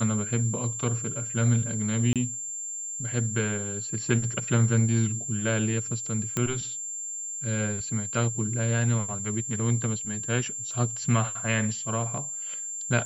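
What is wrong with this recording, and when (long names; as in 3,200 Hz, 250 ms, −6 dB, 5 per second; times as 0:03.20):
whistle 7,300 Hz −32 dBFS
0:02.13–0:02.16: drop-out 27 ms
0:06.37: click −12 dBFS
0:10.72: drop-out 2.6 ms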